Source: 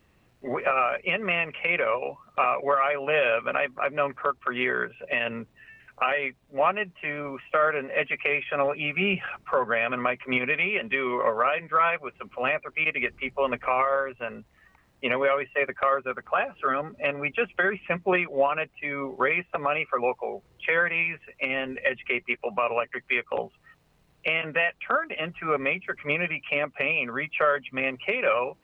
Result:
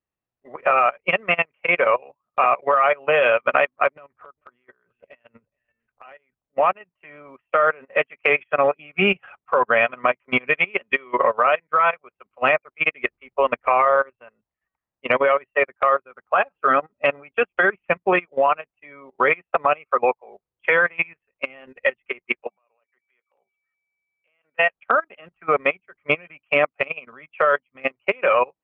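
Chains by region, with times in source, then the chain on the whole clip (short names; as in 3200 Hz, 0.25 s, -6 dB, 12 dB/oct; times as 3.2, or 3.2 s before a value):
3.94–6.43 low shelf 140 Hz +9 dB + compressor 20:1, threshold -31 dBFS + echo 0.436 s -17.5 dB
22.49–24.58 low shelf 220 Hz -10.5 dB + whine 2300 Hz -47 dBFS + compressor 3:1, threshold -45 dBFS
whole clip: bell 890 Hz +6.5 dB 2.2 oct; level quantiser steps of 11 dB; upward expander 2.5:1, over -43 dBFS; gain +7.5 dB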